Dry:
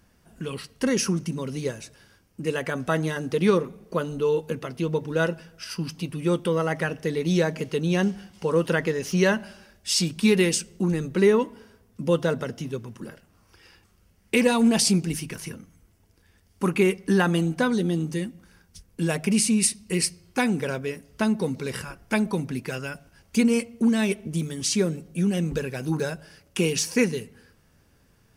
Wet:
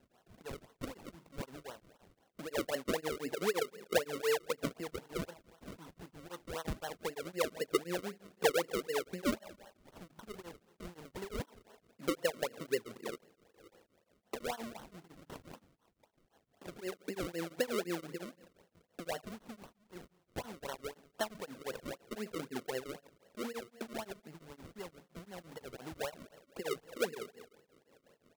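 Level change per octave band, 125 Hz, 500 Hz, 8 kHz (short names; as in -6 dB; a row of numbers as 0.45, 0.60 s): -22.5, -12.5, -18.5 dB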